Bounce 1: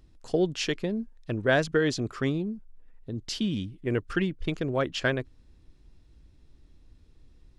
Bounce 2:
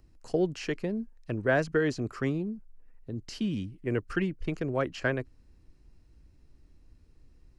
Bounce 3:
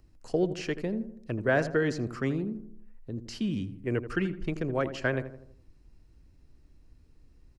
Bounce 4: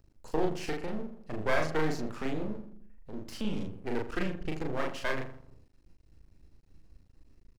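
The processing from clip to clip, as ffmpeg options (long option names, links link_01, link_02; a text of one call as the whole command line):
ffmpeg -i in.wav -filter_complex "[0:a]equalizer=frequency=3500:width=6.3:gain=-12.5,acrossover=split=350|850|2300[link_01][link_02][link_03][link_04];[link_04]alimiter=level_in=9dB:limit=-24dB:level=0:latency=1:release=64,volume=-9dB[link_05];[link_01][link_02][link_03][link_05]amix=inputs=4:normalize=0,volume=-2dB" out.wav
ffmpeg -i in.wav -filter_complex "[0:a]asplit=2[link_01][link_02];[link_02]adelay=82,lowpass=frequency=1400:poles=1,volume=-11dB,asplit=2[link_03][link_04];[link_04]adelay=82,lowpass=frequency=1400:poles=1,volume=0.51,asplit=2[link_05][link_06];[link_06]adelay=82,lowpass=frequency=1400:poles=1,volume=0.51,asplit=2[link_07][link_08];[link_08]adelay=82,lowpass=frequency=1400:poles=1,volume=0.51,asplit=2[link_09][link_10];[link_10]adelay=82,lowpass=frequency=1400:poles=1,volume=0.51[link_11];[link_01][link_03][link_05][link_07][link_09][link_11]amix=inputs=6:normalize=0" out.wav
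ffmpeg -i in.wav -filter_complex "[0:a]aeval=exprs='max(val(0),0)':channel_layout=same,asplit=2[link_01][link_02];[link_02]adelay=38,volume=-2.5dB[link_03];[link_01][link_03]amix=inputs=2:normalize=0" out.wav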